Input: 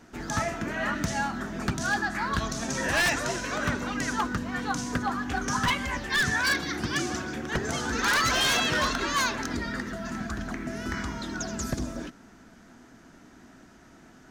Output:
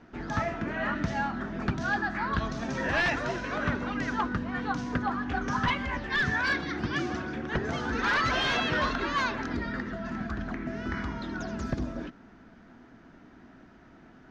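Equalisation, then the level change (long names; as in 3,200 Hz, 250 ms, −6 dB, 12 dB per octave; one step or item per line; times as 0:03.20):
high-frequency loss of the air 230 metres
0.0 dB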